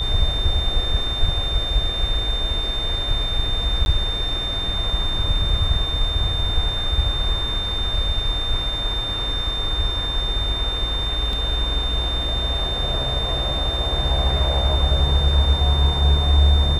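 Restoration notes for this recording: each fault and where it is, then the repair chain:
whine 3.6 kHz -24 dBFS
3.85–3.86 s: dropout 11 ms
11.33 s: dropout 2.1 ms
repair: band-stop 3.6 kHz, Q 30; interpolate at 3.85 s, 11 ms; interpolate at 11.33 s, 2.1 ms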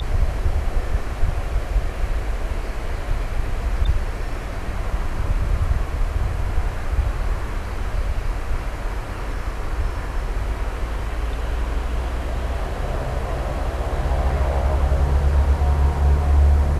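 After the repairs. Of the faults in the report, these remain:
nothing left

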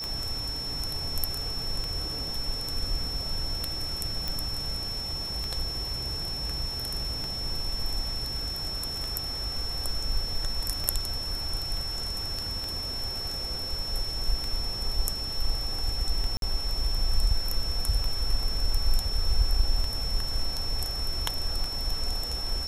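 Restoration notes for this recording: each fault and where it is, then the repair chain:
tick 33 1/3 rpm -18 dBFS
whine 5.4 kHz -32 dBFS
4.28 s: pop
16.37–16.42 s: dropout 52 ms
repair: de-click; band-stop 5.4 kHz, Q 30; interpolate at 16.37 s, 52 ms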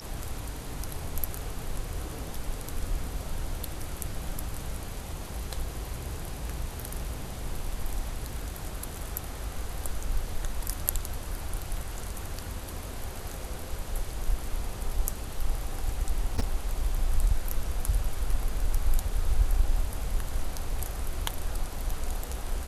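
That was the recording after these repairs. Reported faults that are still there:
nothing left

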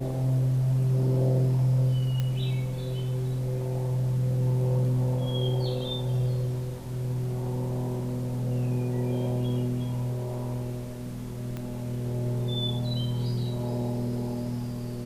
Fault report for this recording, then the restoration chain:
2.20 s: pop -17 dBFS
11.57 s: pop -22 dBFS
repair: de-click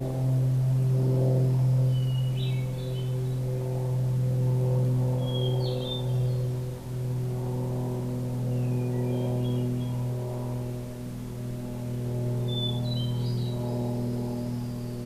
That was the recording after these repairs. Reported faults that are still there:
11.57 s: pop

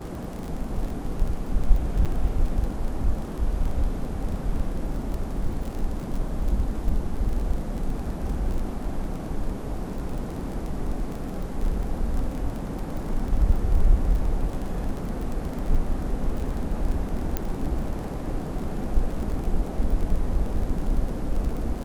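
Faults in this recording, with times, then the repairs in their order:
crackle 24 per s -29 dBFS
2.05–2.06 s: dropout 6.8 ms
17.37 s: pop -11 dBFS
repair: de-click; interpolate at 2.05 s, 6.8 ms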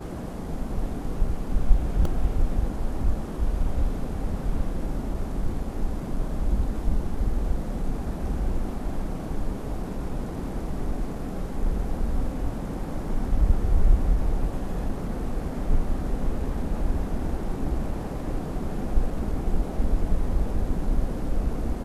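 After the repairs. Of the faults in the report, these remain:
nothing left

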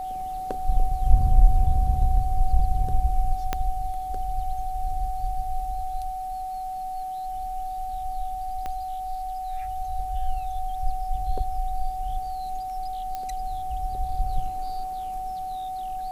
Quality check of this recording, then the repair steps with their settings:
whine 750 Hz -29 dBFS
3.53 s: pop -10 dBFS
8.66 s: pop -19 dBFS
13.15 s: pop -18 dBFS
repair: de-click; band-stop 750 Hz, Q 30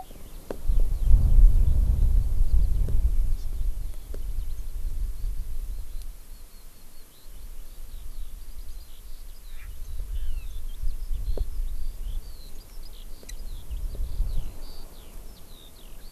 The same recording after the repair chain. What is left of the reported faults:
3.53 s: pop
8.66 s: pop

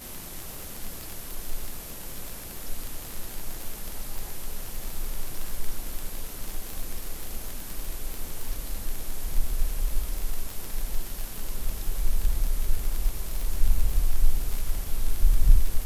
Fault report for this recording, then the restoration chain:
crackle 47 per s -27 dBFS
4.18 s: pop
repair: de-click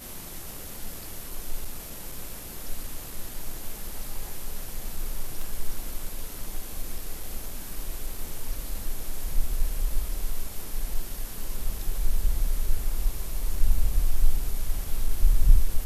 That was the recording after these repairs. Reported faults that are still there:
nothing left

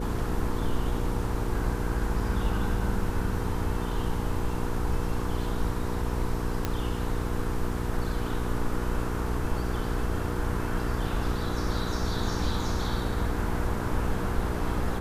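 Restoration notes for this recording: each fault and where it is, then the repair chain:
hum 60 Hz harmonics 8 -33 dBFS
6.65 s: pop -13 dBFS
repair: de-click; de-hum 60 Hz, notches 8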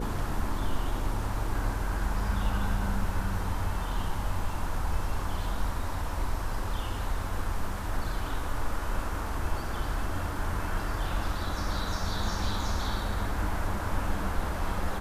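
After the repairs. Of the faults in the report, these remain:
nothing left

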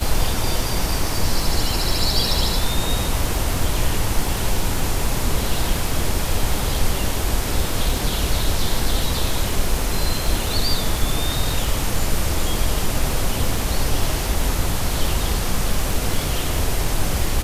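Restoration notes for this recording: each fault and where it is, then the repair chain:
crackle 44 per s -25 dBFS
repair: de-click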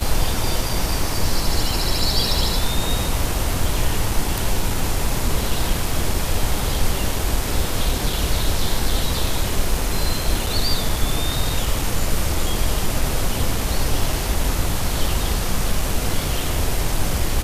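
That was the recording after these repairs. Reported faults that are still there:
nothing left

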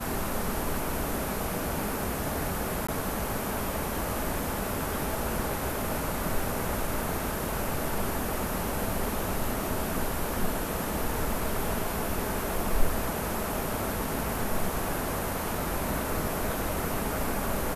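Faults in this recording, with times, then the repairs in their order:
2.87–2.88 s: dropout 15 ms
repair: interpolate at 2.87 s, 15 ms

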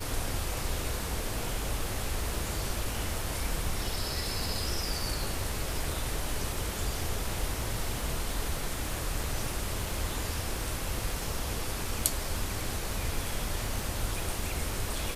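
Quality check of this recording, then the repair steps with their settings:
crackle 43 per s -38 dBFS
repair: de-click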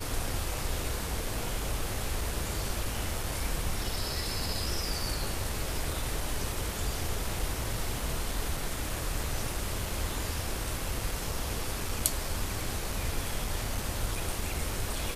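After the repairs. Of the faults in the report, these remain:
nothing left

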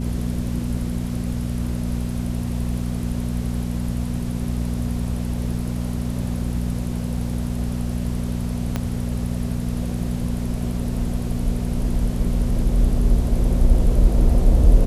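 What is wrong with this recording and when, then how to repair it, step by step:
hum 60 Hz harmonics 4 -25 dBFS
8.76 s: pop -10 dBFS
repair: de-click; de-hum 60 Hz, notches 4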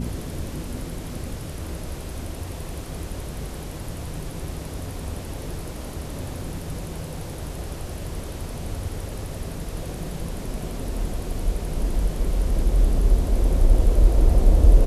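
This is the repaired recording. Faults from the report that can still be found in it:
8.76 s: pop

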